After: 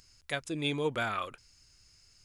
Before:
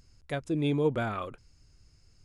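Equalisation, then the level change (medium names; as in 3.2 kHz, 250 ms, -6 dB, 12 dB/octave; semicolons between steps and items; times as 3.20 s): tilt shelf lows -8 dB, about 940 Hz; 0.0 dB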